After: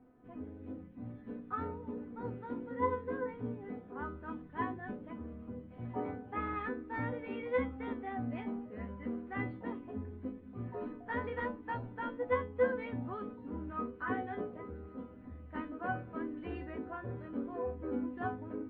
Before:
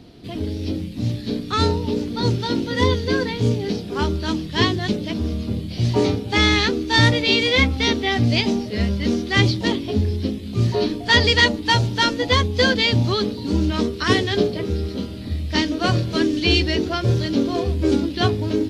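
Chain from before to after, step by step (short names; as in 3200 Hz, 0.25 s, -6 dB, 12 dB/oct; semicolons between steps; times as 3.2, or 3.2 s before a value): inverse Chebyshev low-pass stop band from 5000 Hz, stop band 60 dB; low shelf 440 Hz -9 dB; resonator 250 Hz, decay 0.25 s, harmonics all, mix 90%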